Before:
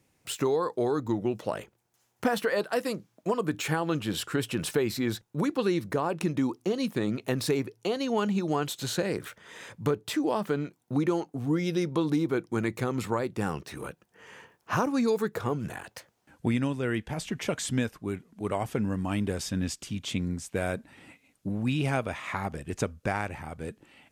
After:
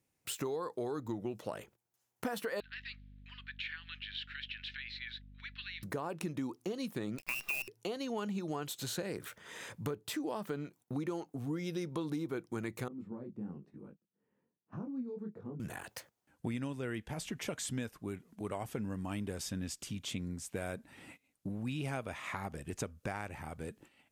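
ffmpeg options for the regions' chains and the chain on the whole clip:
-filter_complex "[0:a]asettb=1/sr,asplit=3[s0][s1][s2];[s0]atrim=end=2.604[s3];[s1]atrim=start=2.6:end=5.83,asetpts=PTS-STARTPTS,afade=t=in:d=0.004:c=qsin,afade=t=out:st=3.226:d=0.004:c=qsin,asuperpass=centerf=2600:order=8:qfactor=1.1,aeval=exprs='val(0)+0.00282*(sin(2*PI*50*n/s)+sin(2*PI*2*50*n/s)/2+sin(2*PI*3*50*n/s)/3+sin(2*PI*4*50*n/s)/4+sin(2*PI*5*50*n/s)/5)':c=same[s4];[s2]atrim=start=5.826[s5];[s3][s4]acrossfade=d=0.004:c1=hsin:c2=qsin[s6];[s6][s5]acrossfade=d=0.004:c1=qsin:c2=hsin,asettb=1/sr,asplit=3[s7][s8][s9];[s7]atrim=end=7.184[s10];[s8]atrim=start=7.18:end=7.68,asetpts=PTS-STARTPTS,afade=t=in:d=0.004:c=qsin,afade=t=out:st=0.496:d=0.004:c=qsin,lowpass=f=2500:t=q:w=0.5098,lowpass=f=2500:t=q:w=0.6013,lowpass=f=2500:t=q:w=0.9,lowpass=f=2500:t=q:w=2.563,afreqshift=-2900,acrusher=bits=6:dc=4:mix=0:aa=0.000001[s11];[s9]atrim=start=7.676[s12];[s10][s11]acrossfade=d=0.004:c1=hsin:c2=qsin[s13];[s13][s12]acrossfade=d=0.004:c1=qsin:c2=hsin,asettb=1/sr,asplit=3[s14][s15][s16];[s14]atrim=end=12.884[s17];[s15]atrim=start=12.88:end=15.6,asetpts=PTS-STARTPTS,afade=t=in:d=0.004:c=qsin,afade=t=out:st=2.716:d=0.004:c=qsin,bandpass=f=210:t=q:w=2,flanger=delay=19:depth=5.9:speed=1.1[s18];[s16]atrim=start=15.596[s19];[s17][s18]acrossfade=d=0.004:c1=hsin:c2=qsin[s20];[s20][s19]acrossfade=d=0.004:c1=qsin:c2=hsin,agate=range=0.282:threshold=0.00224:ratio=16:detection=peak,highshelf=f=9700:g=7.5,acompressor=threshold=0.0112:ratio=2,volume=0.794"

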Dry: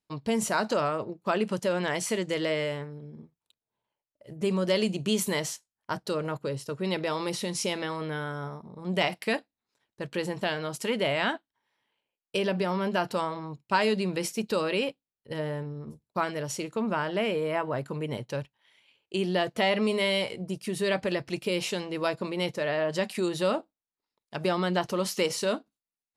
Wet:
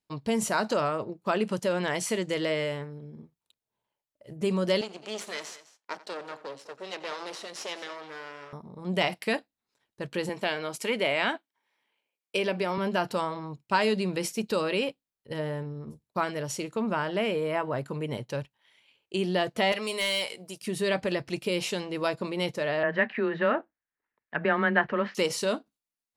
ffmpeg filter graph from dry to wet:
-filter_complex "[0:a]asettb=1/sr,asplit=3[s0][s1][s2];[s0]atrim=end=4.814[s3];[s1]atrim=start=4.81:end=8.53,asetpts=PTS-STARTPTS,afade=t=in:d=0.004:c=qsin,afade=t=out:st=3.716:d=0.004:c=qsin,aeval=exprs='max(val(0),0)':c=same,highpass=430,lowpass=6700,aecho=1:1:89|206:0.119|0.15,atrim=end_sample=164052[s4];[s2]atrim=start=8.526[s5];[s3][s4]acrossfade=d=0.004:c1=hsin:c2=qsin[s6];[s6][s5]acrossfade=d=0.004:c1=qsin:c2=hsin,asettb=1/sr,asplit=3[s7][s8][s9];[s7]atrim=end=10.294[s10];[s8]atrim=start=10.29:end=12.78,asetpts=PTS-STARTPTS,afade=t=in:d=0.004:c=qsin,afade=t=out:st=2.486:d=0.004:c=qsin,highpass=220,equalizer=f=2300:w=7.8:g=7.5[s11];[s9]atrim=start=12.776[s12];[s10][s11]acrossfade=d=0.004:c1=hsin:c2=qsin[s13];[s13][s12]acrossfade=d=0.004:c1=qsin:c2=hsin,asettb=1/sr,asplit=3[s14][s15][s16];[s14]atrim=end=19.724[s17];[s15]atrim=start=19.72:end=20.62,asetpts=PTS-STARTPTS,afade=t=in:d=0.004:c=qsin,afade=t=out:st=0.896:d=0.004:c=qsin,highpass=f=780:p=1,highshelf=f=4700:g=9,asoftclip=type=hard:threshold=0.0841[s18];[s16]atrim=start=20.616[s19];[s17][s18]acrossfade=d=0.004:c1=hsin:c2=qsin[s20];[s20][s19]acrossfade=d=0.004:c1=qsin:c2=hsin,asettb=1/sr,asplit=3[s21][s22][s23];[s21]atrim=end=22.834[s24];[s22]atrim=start=22.83:end=25.15,asetpts=PTS-STARTPTS,afade=t=in:d=0.004:c=qsin,afade=t=out:st=2.316:d=0.004:c=qsin,equalizer=f=1700:t=o:w=0.53:g=14,afreqshift=14,lowpass=f=2600:w=0.5412,lowpass=f=2600:w=1.3066[s25];[s23]atrim=start=25.146[s26];[s24][s25]acrossfade=d=0.004:c1=hsin:c2=qsin[s27];[s27][s26]acrossfade=d=0.004:c1=qsin:c2=hsin"

